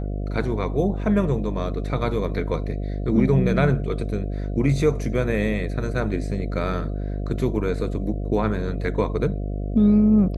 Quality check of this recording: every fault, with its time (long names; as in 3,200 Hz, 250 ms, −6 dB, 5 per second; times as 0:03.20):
mains buzz 50 Hz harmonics 14 −27 dBFS